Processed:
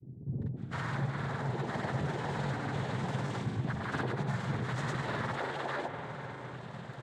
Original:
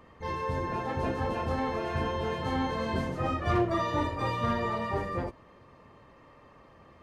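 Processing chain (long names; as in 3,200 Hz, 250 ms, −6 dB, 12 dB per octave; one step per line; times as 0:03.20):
bass and treble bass +7 dB, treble +5 dB
cochlear-implant simulation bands 6
in parallel at −6 dB: hard clipping −32.5 dBFS, distortion −5 dB
on the sum: parametric band 130 Hz +11.5 dB 0.28 octaves
multiband delay without the direct sound lows, highs 510 ms, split 310 Hz
convolution reverb RT60 3.1 s, pre-delay 43 ms, DRR 10 dB
downward compressor 4 to 1, threshold −39 dBFS, peak gain reduction 18.5 dB
granular cloud, pitch spread up and down by 0 semitones
level +6 dB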